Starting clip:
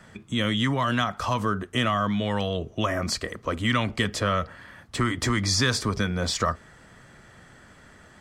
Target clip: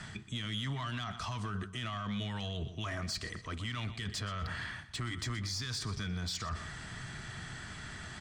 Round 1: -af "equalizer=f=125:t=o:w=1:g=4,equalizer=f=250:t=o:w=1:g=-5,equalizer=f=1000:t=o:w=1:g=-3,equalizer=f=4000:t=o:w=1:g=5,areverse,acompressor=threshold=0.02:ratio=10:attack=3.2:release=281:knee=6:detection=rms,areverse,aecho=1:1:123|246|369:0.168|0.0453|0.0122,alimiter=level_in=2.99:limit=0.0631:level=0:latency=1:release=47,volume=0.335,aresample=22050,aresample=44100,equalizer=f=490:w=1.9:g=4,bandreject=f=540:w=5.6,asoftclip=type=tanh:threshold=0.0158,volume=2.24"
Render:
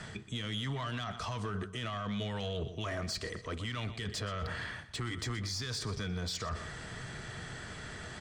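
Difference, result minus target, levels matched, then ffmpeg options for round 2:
500 Hz band +6.0 dB
-af "equalizer=f=125:t=o:w=1:g=4,equalizer=f=250:t=o:w=1:g=-5,equalizer=f=1000:t=o:w=1:g=-3,equalizer=f=4000:t=o:w=1:g=5,areverse,acompressor=threshold=0.02:ratio=10:attack=3.2:release=281:knee=6:detection=rms,areverse,aecho=1:1:123|246|369:0.168|0.0453|0.0122,alimiter=level_in=2.99:limit=0.0631:level=0:latency=1:release=47,volume=0.335,aresample=22050,aresample=44100,equalizer=f=490:w=1.9:g=-7,bandreject=f=540:w=5.6,asoftclip=type=tanh:threshold=0.0158,volume=2.24"

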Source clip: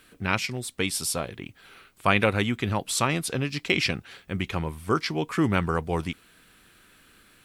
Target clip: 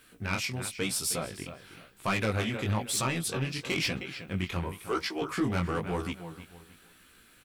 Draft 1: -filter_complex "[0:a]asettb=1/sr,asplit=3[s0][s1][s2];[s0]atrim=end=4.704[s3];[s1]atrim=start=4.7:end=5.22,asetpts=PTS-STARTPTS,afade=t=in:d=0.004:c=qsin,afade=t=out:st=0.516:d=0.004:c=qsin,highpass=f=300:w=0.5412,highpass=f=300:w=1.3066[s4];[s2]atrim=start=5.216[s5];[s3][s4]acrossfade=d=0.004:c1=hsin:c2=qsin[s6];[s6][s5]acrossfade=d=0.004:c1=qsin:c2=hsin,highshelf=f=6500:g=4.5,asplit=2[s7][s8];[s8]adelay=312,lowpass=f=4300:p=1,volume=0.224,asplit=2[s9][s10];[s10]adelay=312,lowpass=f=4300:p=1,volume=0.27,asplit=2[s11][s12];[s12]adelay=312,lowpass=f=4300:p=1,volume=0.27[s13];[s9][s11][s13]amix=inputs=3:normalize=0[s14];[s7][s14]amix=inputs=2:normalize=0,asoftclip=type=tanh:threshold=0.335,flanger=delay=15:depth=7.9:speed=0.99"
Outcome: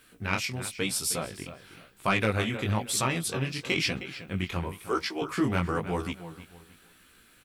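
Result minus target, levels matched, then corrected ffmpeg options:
saturation: distortion -10 dB
-filter_complex "[0:a]asettb=1/sr,asplit=3[s0][s1][s2];[s0]atrim=end=4.704[s3];[s1]atrim=start=4.7:end=5.22,asetpts=PTS-STARTPTS,afade=t=in:d=0.004:c=qsin,afade=t=out:st=0.516:d=0.004:c=qsin,highpass=f=300:w=0.5412,highpass=f=300:w=1.3066[s4];[s2]atrim=start=5.216[s5];[s3][s4]acrossfade=d=0.004:c1=hsin:c2=qsin[s6];[s6][s5]acrossfade=d=0.004:c1=qsin:c2=hsin,highshelf=f=6500:g=4.5,asplit=2[s7][s8];[s8]adelay=312,lowpass=f=4300:p=1,volume=0.224,asplit=2[s9][s10];[s10]adelay=312,lowpass=f=4300:p=1,volume=0.27,asplit=2[s11][s12];[s12]adelay=312,lowpass=f=4300:p=1,volume=0.27[s13];[s9][s11][s13]amix=inputs=3:normalize=0[s14];[s7][s14]amix=inputs=2:normalize=0,asoftclip=type=tanh:threshold=0.112,flanger=delay=15:depth=7.9:speed=0.99"

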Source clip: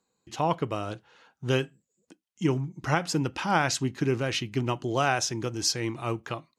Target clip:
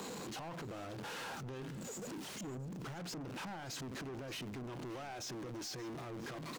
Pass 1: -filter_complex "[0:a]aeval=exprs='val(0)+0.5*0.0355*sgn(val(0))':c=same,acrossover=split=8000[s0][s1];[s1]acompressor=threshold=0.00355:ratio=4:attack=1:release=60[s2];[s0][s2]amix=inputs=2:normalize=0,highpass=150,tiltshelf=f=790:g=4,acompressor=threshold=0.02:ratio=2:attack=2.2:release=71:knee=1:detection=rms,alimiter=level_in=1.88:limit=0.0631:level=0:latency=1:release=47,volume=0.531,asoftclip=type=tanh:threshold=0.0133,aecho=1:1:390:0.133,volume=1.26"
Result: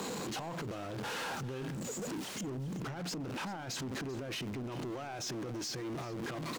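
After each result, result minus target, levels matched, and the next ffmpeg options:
echo 187 ms early; compression: peak gain reduction -5 dB; saturation: distortion -5 dB
-filter_complex "[0:a]aeval=exprs='val(0)+0.5*0.0355*sgn(val(0))':c=same,acrossover=split=8000[s0][s1];[s1]acompressor=threshold=0.00355:ratio=4:attack=1:release=60[s2];[s0][s2]amix=inputs=2:normalize=0,highpass=150,tiltshelf=f=790:g=4,acompressor=threshold=0.02:ratio=2:attack=2.2:release=71:knee=1:detection=rms,alimiter=level_in=1.88:limit=0.0631:level=0:latency=1:release=47,volume=0.531,asoftclip=type=tanh:threshold=0.0133,aecho=1:1:577:0.133,volume=1.26"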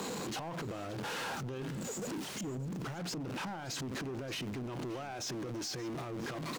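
compression: peak gain reduction -5 dB; saturation: distortion -5 dB
-filter_complex "[0:a]aeval=exprs='val(0)+0.5*0.0355*sgn(val(0))':c=same,acrossover=split=8000[s0][s1];[s1]acompressor=threshold=0.00355:ratio=4:attack=1:release=60[s2];[s0][s2]amix=inputs=2:normalize=0,highpass=150,tiltshelf=f=790:g=4,acompressor=threshold=0.00631:ratio=2:attack=2.2:release=71:knee=1:detection=rms,alimiter=level_in=1.88:limit=0.0631:level=0:latency=1:release=47,volume=0.531,asoftclip=type=tanh:threshold=0.0133,aecho=1:1:577:0.133,volume=1.26"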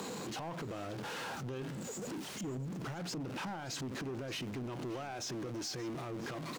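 saturation: distortion -5 dB
-filter_complex "[0:a]aeval=exprs='val(0)+0.5*0.0355*sgn(val(0))':c=same,acrossover=split=8000[s0][s1];[s1]acompressor=threshold=0.00355:ratio=4:attack=1:release=60[s2];[s0][s2]amix=inputs=2:normalize=0,highpass=150,tiltshelf=f=790:g=4,acompressor=threshold=0.00631:ratio=2:attack=2.2:release=71:knee=1:detection=rms,alimiter=level_in=1.88:limit=0.0631:level=0:latency=1:release=47,volume=0.531,asoftclip=type=tanh:threshold=0.00631,aecho=1:1:577:0.133,volume=1.26"

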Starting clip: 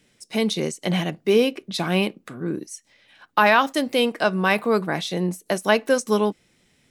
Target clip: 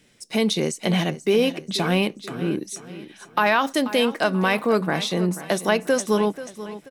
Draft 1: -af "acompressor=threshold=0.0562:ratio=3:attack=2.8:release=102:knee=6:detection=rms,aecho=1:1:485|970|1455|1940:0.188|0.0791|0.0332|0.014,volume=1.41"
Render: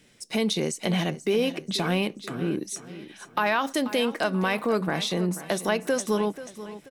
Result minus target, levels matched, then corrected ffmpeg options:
compression: peak gain reduction +5 dB
-af "acompressor=threshold=0.133:ratio=3:attack=2.8:release=102:knee=6:detection=rms,aecho=1:1:485|970|1455|1940:0.188|0.0791|0.0332|0.014,volume=1.41"

